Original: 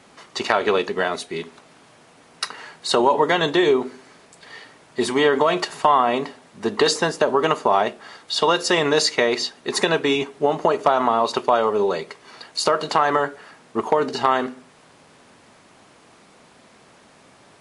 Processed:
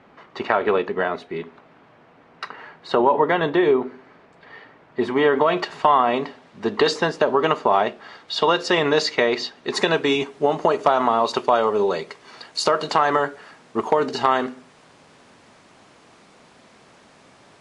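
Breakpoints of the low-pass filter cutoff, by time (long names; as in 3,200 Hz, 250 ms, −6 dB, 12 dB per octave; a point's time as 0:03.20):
0:05.09 2,100 Hz
0:05.83 4,300 Hz
0:09.52 4,300 Hz
0:10.13 8,300 Hz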